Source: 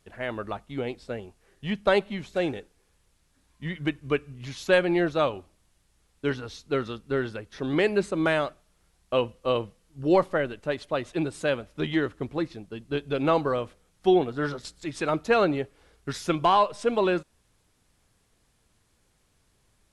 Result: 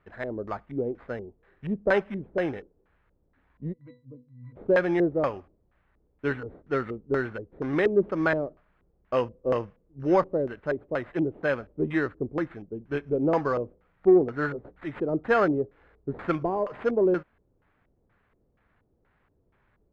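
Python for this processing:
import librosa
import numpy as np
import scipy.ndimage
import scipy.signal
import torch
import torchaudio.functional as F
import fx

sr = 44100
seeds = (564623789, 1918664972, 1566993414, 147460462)

y = fx.sample_hold(x, sr, seeds[0], rate_hz=5700.0, jitter_pct=0)
y = fx.octave_resonator(y, sr, note='B', decay_s=0.3, at=(3.72, 4.55), fade=0.02)
y = fx.filter_lfo_lowpass(y, sr, shape='square', hz=2.1, low_hz=440.0, high_hz=1700.0, q=1.7)
y = fx.cheby_harmonics(y, sr, harmonics=(5,), levels_db=(-34,), full_scale_db=-7.0)
y = y * 10.0 ** (-2.0 / 20.0)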